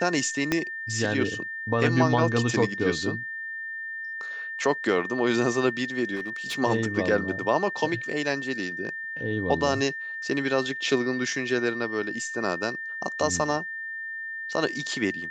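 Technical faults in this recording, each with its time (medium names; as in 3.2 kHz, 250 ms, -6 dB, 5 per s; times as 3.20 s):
whine 1.8 kHz -32 dBFS
0.52 s: pop -9 dBFS
6.15–6.58 s: clipped -27 dBFS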